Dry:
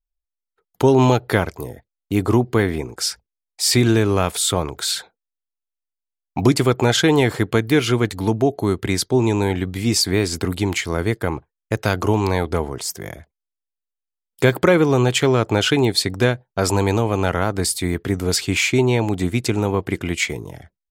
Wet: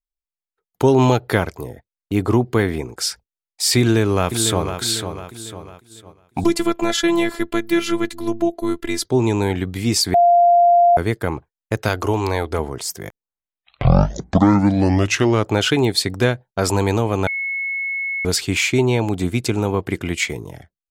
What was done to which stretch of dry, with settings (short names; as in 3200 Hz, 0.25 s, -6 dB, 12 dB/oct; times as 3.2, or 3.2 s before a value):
1.6–2.41 high shelf 5400 Hz -5 dB
3.81–4.8 echo throw 0.5 s, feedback 45%, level -8 dB
6.44–9.05 robotiser 338 Hz
10.14–10.97 bleep 696 Hz -9 dBFS
11.88–12.59 bell 170 Hz -10 dB
13.1 tape start 2.44 s
17.27–18.25 bleep 2190 Hz -21 dBFS
18.86–19.8 notch 1900 Hz, Q 11
whole clip: gate -39 dBFS, range -9 dB